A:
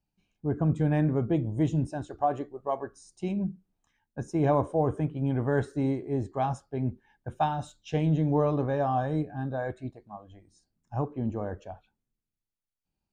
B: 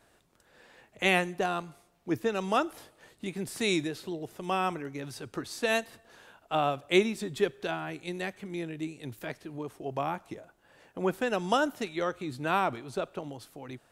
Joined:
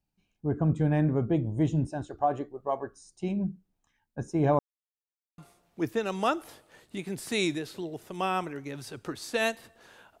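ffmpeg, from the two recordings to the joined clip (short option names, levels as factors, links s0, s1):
-filter_complex "[0:a]apad=whole_dur=10.2,atrim=end=10.2,asplit=2[s0][s1];[s0]atrim=end=4.59,asetpts=PTS-STARTPTS,afade=t=out:st=4.586:d=0.004:c=hsin[s2];[s1]atrim=start=4.59:end=5.38,asetpts=PTS-STARTPTS,volume=0[s3];[1:a]atrim=start=1.67:end=6.49,asetpts=PTS-STARTPTS,afade=t=in:d=0.004:c=hsin[s4];[s2][s3][s4]concat=n=3:v=0:a=1"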